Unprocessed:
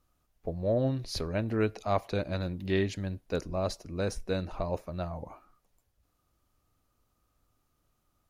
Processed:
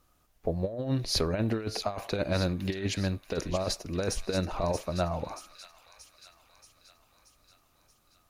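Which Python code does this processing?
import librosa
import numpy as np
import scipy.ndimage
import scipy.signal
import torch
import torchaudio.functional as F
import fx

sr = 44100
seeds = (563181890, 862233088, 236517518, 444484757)

p1 = fx.low_shelf(x, sr, hz=270.0, db=-4.5)
p2 = fx.over_compress(p1, sr, threshold_db=-33.0, ratio=-0.5)
p3 = p2 + fx.echo_wet_highpass(p2, sr, ms=630, feedback_pct=58, hz=2300.0, wet_db=-7.5, dry=0)
y = p3 * librosa.db_to_amplitude(5.5)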